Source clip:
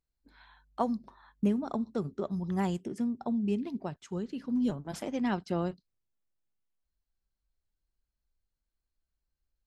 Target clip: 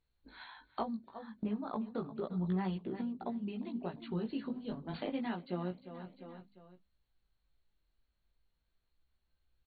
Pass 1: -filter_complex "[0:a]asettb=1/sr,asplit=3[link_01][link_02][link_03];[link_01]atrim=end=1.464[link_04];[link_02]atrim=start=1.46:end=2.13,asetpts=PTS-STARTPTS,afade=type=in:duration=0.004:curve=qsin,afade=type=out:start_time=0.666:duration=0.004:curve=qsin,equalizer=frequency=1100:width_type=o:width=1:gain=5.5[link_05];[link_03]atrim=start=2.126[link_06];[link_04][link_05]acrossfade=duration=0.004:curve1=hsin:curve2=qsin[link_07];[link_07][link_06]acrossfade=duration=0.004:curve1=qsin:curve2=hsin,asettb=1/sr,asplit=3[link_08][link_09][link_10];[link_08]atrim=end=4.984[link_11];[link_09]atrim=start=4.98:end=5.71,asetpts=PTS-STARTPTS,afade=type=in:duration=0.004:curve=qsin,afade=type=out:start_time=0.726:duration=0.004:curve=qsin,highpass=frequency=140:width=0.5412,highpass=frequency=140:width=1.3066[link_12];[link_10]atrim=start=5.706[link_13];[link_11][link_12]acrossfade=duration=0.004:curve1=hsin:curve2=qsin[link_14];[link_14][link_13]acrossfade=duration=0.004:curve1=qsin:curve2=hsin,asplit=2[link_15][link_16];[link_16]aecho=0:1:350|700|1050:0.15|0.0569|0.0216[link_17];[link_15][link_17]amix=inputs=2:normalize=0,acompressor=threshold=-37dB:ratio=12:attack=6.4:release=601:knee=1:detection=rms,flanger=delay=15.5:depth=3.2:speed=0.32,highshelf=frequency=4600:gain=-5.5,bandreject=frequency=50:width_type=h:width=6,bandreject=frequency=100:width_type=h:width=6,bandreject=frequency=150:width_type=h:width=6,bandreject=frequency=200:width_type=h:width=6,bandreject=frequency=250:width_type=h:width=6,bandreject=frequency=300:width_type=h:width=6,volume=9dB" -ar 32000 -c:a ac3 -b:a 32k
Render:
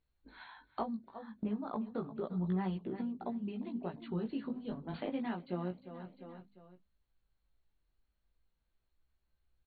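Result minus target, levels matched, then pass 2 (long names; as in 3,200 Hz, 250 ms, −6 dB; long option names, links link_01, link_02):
4,000 Hz band −3.5 dB
-filter_complex "[0:a]asettb=1/sr,asplit=3[link_01][link_02][link_03];[link_01]atrim=end=1.464[link_04];[link_02]atrim=start=1.46:end=2.13,asetpts=PTS-STARTPTS,afade=type=in:duration=0.004:curve=qsin,afade=type=out:start_time=0.666:duration=0.004:curve=qsin,equalizer=frequency=1100:width_type=o:width=1:gain=5.5[link_05];[link_03]atrim=start=2.126[link_06];[link_04][link_05]acrossfade=duration=0.004:curve1=hsin:curve2=qsin[link_07];[link_07][link_06]acrossfade=duration=0.004:curve1=qsin:curve2=hsin,asettb=1/sr,asplit=3[link_08][link_09][link_10];[link_08]atrim=end=4.984[link_11];[link_09]atrim=start=4.98:end=5.71,asetpts=PTS-STARTPTS,afade=type=in:duration=0.004:curve=qsin,afade=type=out:start_time=0.726:duration=0.004:curve=qsin,highpass=frequency=140:width=0.5412,highpass=frequency=140:width=1.3066[link_12];[link_10]atrim=start=5.706[link_13];[link_11][link_12]acrossfade=duration=0.004:curve1=hsin:curve2=qsin[link_14];[link_14][link_13]acrossfade=duration=0.004:curve1=qsin:curve2=hsin,asplit=2[link_15][link_16];[link_16]aecho=0:1:350|700|1050:0.15|0.0569|0.0216[link_17];[link_15][link_17]amix=inputs=2:normalize=0,acompressor=threshold=-37dB:ratio=12:attack=6.4:release=601:knee=1:detection=rms,flanger=delay=15.5:depth=3.2:speed=0.32,highshelf=frequency=4600:gain=5,bandreject=frequency=50:width_type=h:width=6,bandreject=frequency=100:width_type=h:width=6,bandreject=frequency=150:width_type=h:width=6,bandreject=frequency=200:width_type=h:width=6,bandreject=frequency=250:width_type=h:width=6,bandreject=frequency=300:width_type=h:width=6,volume=9dB" -ar 32000 -c:a ac3 -b:a 32k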